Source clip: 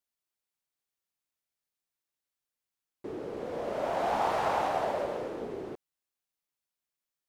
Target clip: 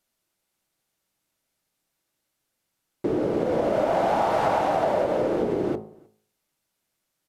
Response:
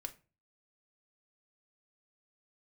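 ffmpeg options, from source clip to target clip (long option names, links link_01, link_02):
-filter_complex "[0:a]equalizer=frequency=200:width=0.33:gain=7.5,bandreject=frequency=53.46:width_type=h:width=4,bandreject=frequency=106.92:width_type=h:width=4,bandreject=frequency=160.38:width_type=h:width=4,bandreject=frequency=213.84:width_type=h:width=4,bandreject=frequency=267.3:width_type=h:width=4,bandreject=frequency=320.76:width_type=h:width=4,bandreject=frequency=374.22:width_type=h:width=4,bandreject=frequency=427.68:width_type=h:width=4,bandreject=frequency=481.14:width_type=h:width=4,bandreject=frequency=534.6:width_type=h:width=4,bandreject=frequency=588.06:width_type=h:width=4,bandreject=frequency=641.52:width_type=h:width=4,bandreject=frequency=694.98:width_type=h:width=4,bandreject=frequency=748.44:width_type=h:width=4,bandreject=frequency=801.9:width_type=h:width=4,bandreject=frequency=855.36:width_type=h:width=4,bandreject=frequency=908.82:width_type=h:width=4,bandreject=frequency=962.28:width_type=h:width=4,bandreject=frequency=1015.74:width_type=h:width=4,bandreject=frequency=1069.2:width_type=h:width=4,bandreject=frequency=1122.66:width_type=h:width=4,bandreject=frequency=1176.12:width_type=h:width=4,bandreject=frequency=1229.58:width_type=h:width=4,bandreject=frequency=1283.04:width_type=h:width=4,acompressor=threshold=-31dB:ratio=10,asplit=2[link_01][link_02];[link_02]adelay=309,volume=-28dB,highshelf=frequency=4000:gain=-6.95[link_03];[link_01][link_03]amix=inputs=2:normalize=0,asplit=2[link_04][link_05];[1:a]atrim=start_sample=2205[link_06];[link_05][link_06]afir=irnorm=-1:irlink=0,volume=1dB[link_07];[link_04][link_07]amix=inputs=2:normalize=0,aresample=32000,aresample=44100,volume=7dB"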